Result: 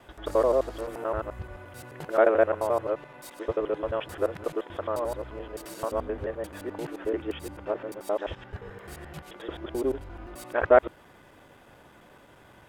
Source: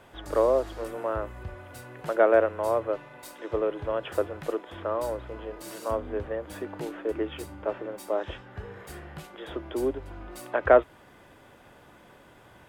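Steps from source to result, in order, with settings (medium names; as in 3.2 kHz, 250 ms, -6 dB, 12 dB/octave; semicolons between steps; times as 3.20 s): time reversed locally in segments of 87 ms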